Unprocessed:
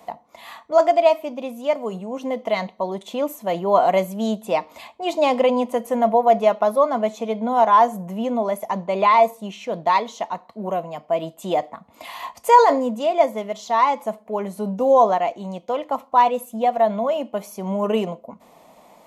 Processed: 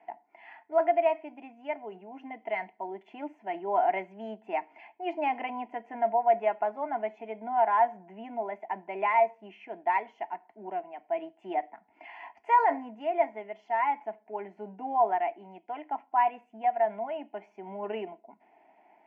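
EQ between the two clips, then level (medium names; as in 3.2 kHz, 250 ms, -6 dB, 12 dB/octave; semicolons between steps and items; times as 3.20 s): dynamic bell 1.3 kHz, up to +3 dB, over -26 dBFS, Q 0.88; cabinet simulation 220–3000 Hz, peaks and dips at 240 Hz -9 dB, 540 Hz -8 dB, 1.2 kHz -5 dB; static phaser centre 770 Hz, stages 8; -6.0 dB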